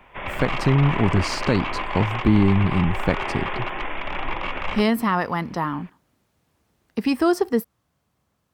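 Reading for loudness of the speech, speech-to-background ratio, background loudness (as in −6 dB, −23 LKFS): −22.5 LKFS, 6.0 dB, −28.5 LKFS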